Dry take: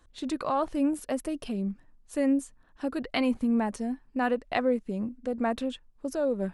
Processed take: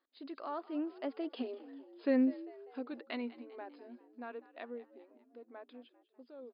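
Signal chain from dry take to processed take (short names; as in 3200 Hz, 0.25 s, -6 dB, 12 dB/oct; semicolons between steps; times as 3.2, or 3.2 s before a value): Doppler pass-by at 1.79, 22 m/s, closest 6 m; frequency-shifting echo 0.198 s, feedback 50%, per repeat +71 Hz, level -18.5 dB; FFT band-pass 230–5100 Hz; gain +1 dB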